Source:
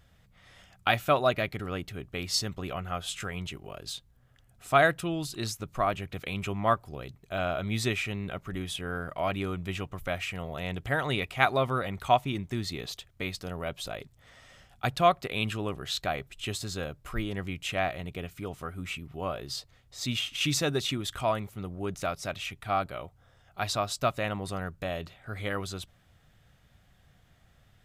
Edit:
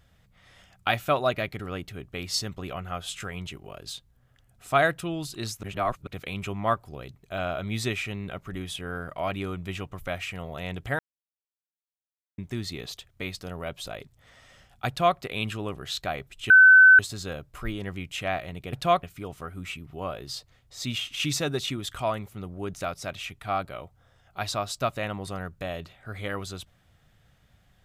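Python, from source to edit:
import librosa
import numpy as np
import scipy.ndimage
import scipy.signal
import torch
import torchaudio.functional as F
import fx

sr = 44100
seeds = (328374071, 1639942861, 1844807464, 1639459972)

y = fx.edit(x, sr, fx.reverse_span(start_s=5.63, length_s=0.44),
    fx.silence(start_s=10.99, length_s=1.39),
    fx.duplicate(start_s=14.88, length_s=0.3, to_s=18.24),
    fx.insert_tone(at_s=16.5, length_s=0.49, hz=1520.0, db=-9.5), tone=tone)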